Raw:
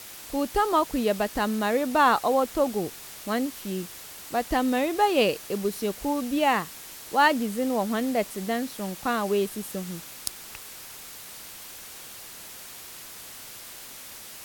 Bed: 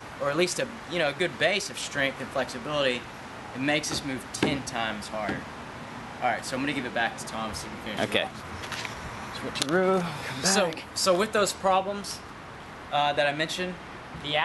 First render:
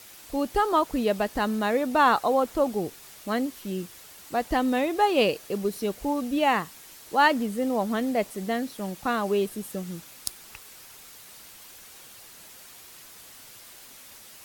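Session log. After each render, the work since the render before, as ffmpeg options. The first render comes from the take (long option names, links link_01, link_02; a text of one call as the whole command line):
ffmpeg -i in.wav -af "afftdn=noise_reduction=6:noise_floor=-43" out.wav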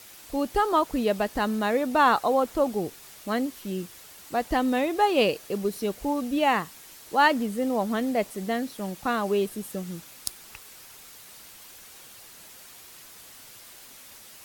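ffmpeg -i in.wav -af anull out.wav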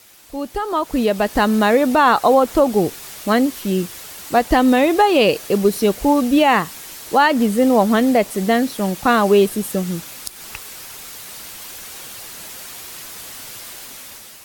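ffmpeg -i in.wav -af "alimiter=limit=-16dB:level=0:latency=1:release=155,dynaudnorm=framelen=390:gausssize=5:maxgain=13dB" out.wav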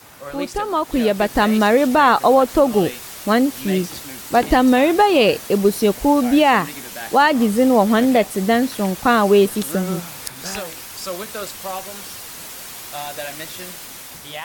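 ffmpeg -i in.wav -i bed.wav -filter_complex "[1:a]volume=-6dB[link_01];[0:a][link_01]amix=inputs=2:normalize=0" out.wav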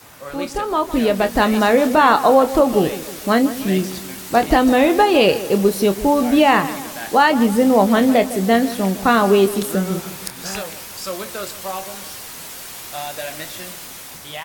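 ffmpeg -i in.wav -filter_complex "[0:a]asplit=2[link_01][link_02];[link_02]adelay=26,volume=-10.5dB[link_03];[link_01][link_03]amix=inputs=2:normalize=0,asplit=2[link_04][link_05];[link_05]adelay=158,lowpass=frequency=2000:poles=1,volume=-14dB,asplit=2[link_06][link_07];[link_07]adelay=158,lowpass=frequency=2000:poles=1,volume=0.51,asplit=2[link_08][link_09];[link_09]adelay=158,lowpass=frequency=2000:poles=1,volume=0.51,asplit=2[link_10][link_11];[link_11]adelay=158,lowpass=frequency=2000:poles=1,volume=0.51,asplit=2[link_12][link_13];[link_13]adelay=158,lowpass=frequency=2000:poles=1,volume=0.51[link_14];[link_04][link_06][link_08][link_10][link_12][link_14]amix=inputs=6:normalize=0" out.wav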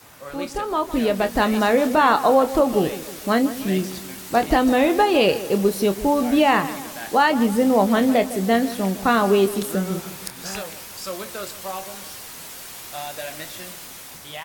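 ffmpeg -i in.wav -af "volume=-3.5dB" out.wav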